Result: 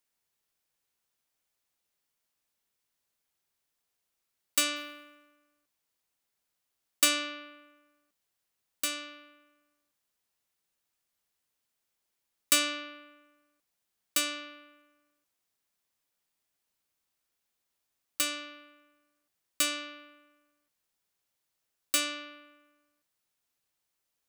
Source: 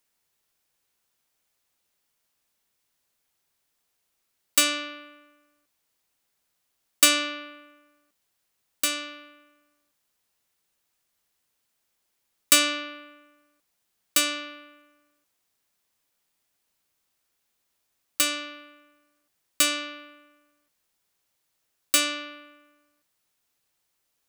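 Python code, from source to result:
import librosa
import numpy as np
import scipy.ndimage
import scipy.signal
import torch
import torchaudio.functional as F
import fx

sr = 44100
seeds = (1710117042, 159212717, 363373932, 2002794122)

y = fx.quant_float(x, sr, bits=2, at=(4.76, 7.08))
y = F.gain(torch.from_numpy(y), -6.5).numpy()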